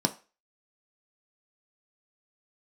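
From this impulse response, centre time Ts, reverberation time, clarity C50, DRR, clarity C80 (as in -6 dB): 6 ms, 0.35 s, 16.5 dB, 5.5 dB, 22.0 dB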